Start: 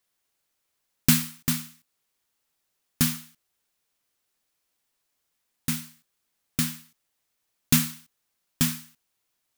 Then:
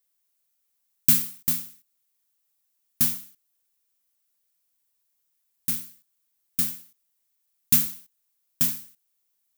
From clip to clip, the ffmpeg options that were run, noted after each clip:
-af "aemphasis=mode=production:type=50kf,volume=0.355"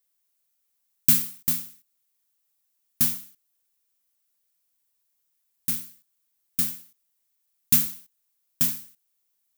-af anull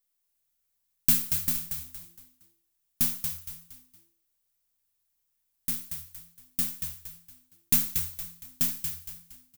-filter_complex "[0:a]aeval=exprs='if(lt(val(0),0),0.708*val(0),val(0))':c=same,asplit=2[s0][s1];[s1]asplit=4[s2][s3][s4][s5];[s2]adelay=232,afreqshift=-84,volume=0.473[s6];[s3]adelay=464,afreqshift=-168,volume=0.17[s7];[s4]adelay=696,afreqshift=-252,volume=0.0617[s8];[s5]adelay=928,afreqshift=-336,volume=0.0221[s9];[s6][s7][s8][s9]amix=inputs=4:normalize=0[s10];[s0][s10]amix=inputs=2:normalize=0,volume=0.75"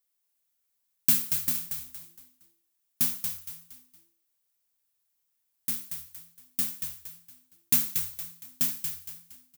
-af "highpass=f=190:p=1"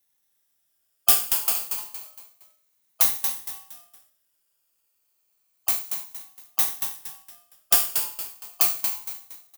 -af "afftfilt=real='re*pow(10,20/40*sin(2*PI*(1.5*log(max(b,1)*sr/1024/100)/log(2)-(-0.3)*(pts-256)/sr)))':imag='im*pow(10,20/40*sin(2*PI*(1.5*log(max(b,1)*sr/1024/100)/log(2)-(-0.3)*(pts-256)/sr)))':win_size=1024:overlap=0.75,aeval=exprs='val(0)*sgn(sin(2*PI*950*n/s))':c=same,volume=1.19"

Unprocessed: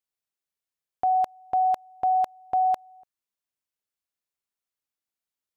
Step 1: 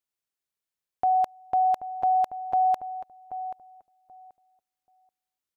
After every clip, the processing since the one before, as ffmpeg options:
-filter_complex "[0:a]asplit=2[s0][s1];[s1]adelay=782,lowpass=f=1100:p=1,volume=0.299,asplit=2[s2][s3];[s3]adelay=782,lowpass=f=1100:p=1,volume=0.2,asplit=2[s4][s5];[s5]adelay=782,lowpass=f=1100:p=1,volume=0.2[s6];[s0][s2][s4][s6]amix=inputs=4:normalize=0"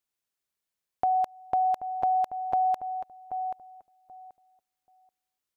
-af "acompressor=threshold=0.0501:ratio=3,volume=1.26"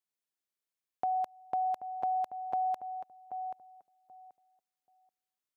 -af "highpass=130,volume=0.473"

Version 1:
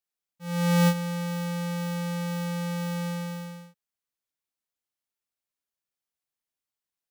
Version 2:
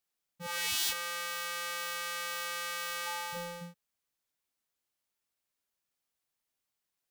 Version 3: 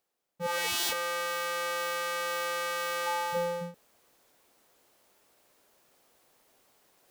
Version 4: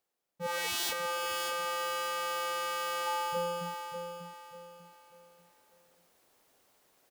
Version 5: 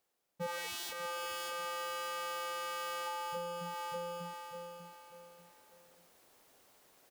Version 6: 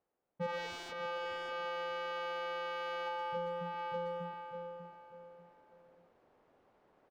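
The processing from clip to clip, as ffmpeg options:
-af "afftfilt=real='re*lt(hypot(re,im),0.0794)':imag='im*lt(hypot(re,im),0.0794)':win_size=1024:overlap=0.75,volume=1.58"
-af "equalizer=f=500:t=o:w=2.5:g=12.5,areverse,acompressor=mode=upward:threshold=0.00316:ratio=2.5,areverse"
-af "aecho=1:1:593|1186|1779|2372:0.447|0.156|0.0547|0.0192,volume=0.708"
-af "acompressor=threshold=0.0126:ratio=12,volume=1.41"
-filter_complex "[0:a]adynamicsmooth=sensitivity=4:basefreq=1400,asplit=2[s0][s1];[s1]adelay=120,highpass=300,lowpass=3400,asoftclip=type=hard:threshold=0.0126,volume=0.398[s2];[s0][s2]amix=inputs=2:normalize=0,volume=1.26"

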